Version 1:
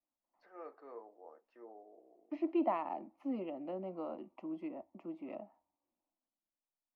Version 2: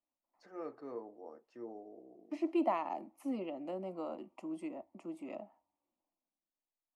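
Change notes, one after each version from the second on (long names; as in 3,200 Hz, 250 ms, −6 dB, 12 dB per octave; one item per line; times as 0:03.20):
first voice: remove high-pass filter 570 Hz 12 dB per octave
master: remove high-frequency loss of the air 280 metres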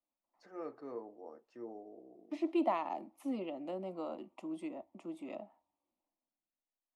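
second voice: add parametric band 3,600 Hz +12 dB 0.23 octaves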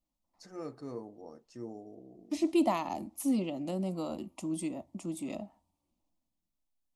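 second voice: send on
master: remove three-way crossover with the lows and the highs turned down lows −21 dB, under 290 Hz, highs −22 dB, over 2,900 Hz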